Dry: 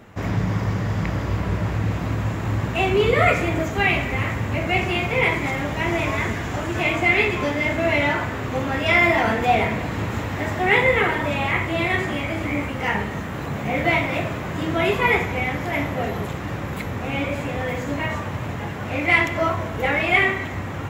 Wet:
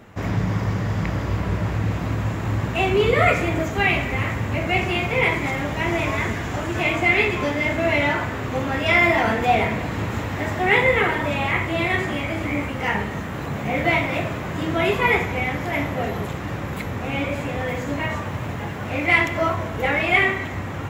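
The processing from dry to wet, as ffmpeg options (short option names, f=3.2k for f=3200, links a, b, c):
-filter_complex "[0:a]asettb=1/sr,asplit=3[a][b][c];[a]atrim=end=18.264[d];[b]atrim=start=18.26:end=19.54,asetpts=PTS-STARTPTS,afade=t=in:d=0.004:c=qsin,afade=t=out:st=1.276:d=0.004:c=qsin,acrusher=bits=8:mix=0:aa=0.5[e];[c]atrim=start=19.536[f];[d][e]acrossfade=d=0.004:c1=hsin:c2=qsin[g];[g][f]acrossfade=d=0.004:c1=qsin:c2=hsin"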